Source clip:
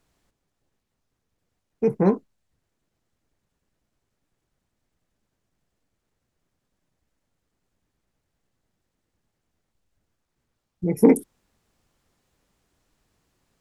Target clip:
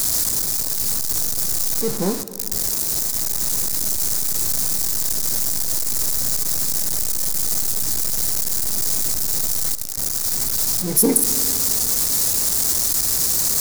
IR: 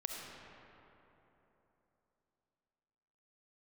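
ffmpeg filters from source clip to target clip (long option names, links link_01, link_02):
-filter_complex "[0:a]aeval=exprs='val(0)+0.5*0.0794*sgn(val(0))':channel_layout=same,aexciter=amount=4.6:drive=8.9:freq=4300,asplit=2[link_01][link_02];[1:a]atrim=start_sample=2205[link_03];[link_02][link_03]afir=irnorm=-1:irlink=0,volume=-9dB[link_04];[link_01][link_04]amix=inputs=2:normalize=0,volume=-7dB"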